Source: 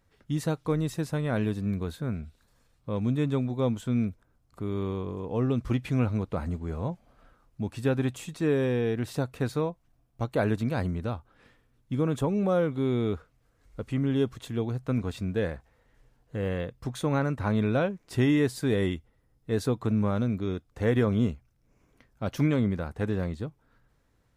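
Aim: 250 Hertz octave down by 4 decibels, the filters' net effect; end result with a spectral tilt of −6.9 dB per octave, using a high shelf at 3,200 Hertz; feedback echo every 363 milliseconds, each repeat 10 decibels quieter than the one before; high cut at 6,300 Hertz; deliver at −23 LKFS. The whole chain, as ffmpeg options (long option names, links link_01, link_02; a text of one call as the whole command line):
ffmpeg -i in.wav -af "lowpass=6300,equalizer=frequency=250:width_type=o:gain=-5,highshelf=frequency=3200:gain=-9,aecho=1:1:363|726|1089|1452:0.316|0.101|0.0324|0.0104,volume=8dB" out.wav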